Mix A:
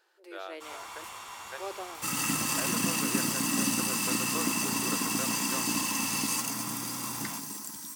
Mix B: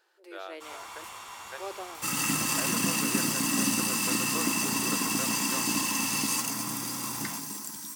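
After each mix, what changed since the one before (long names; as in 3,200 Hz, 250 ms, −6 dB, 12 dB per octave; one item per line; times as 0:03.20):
second sound: send +6.0 dB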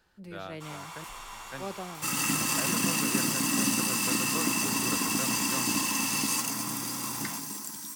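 speech: remove linear-phase brick-wall high-pass 310 Hz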